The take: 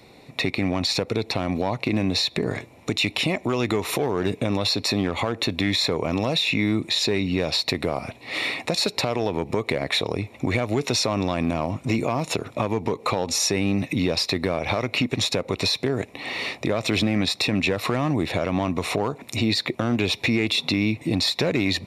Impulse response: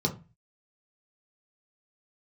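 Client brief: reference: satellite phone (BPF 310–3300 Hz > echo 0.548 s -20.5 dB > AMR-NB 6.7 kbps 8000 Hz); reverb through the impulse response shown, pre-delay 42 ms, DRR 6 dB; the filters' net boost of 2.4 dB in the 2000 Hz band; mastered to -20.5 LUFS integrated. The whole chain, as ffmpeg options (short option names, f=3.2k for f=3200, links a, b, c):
-filter_complex "[0:a]equalizer=f=2k:t=o:g=4,asplit=2[a][b];[1:a]atrim=start_sample=2205,adelay=42[c];[b][c]afir=irnorm=-1:irlink=0,volume=-14dB[d];[a][d]amix=inputs=2:normalize=0,highpass=310,lowpass=3.3k,aecho=1:1:548:0.0944,volume=5.5dB" -ar 8000 -c:a libopencore_amrnb -b:a 6700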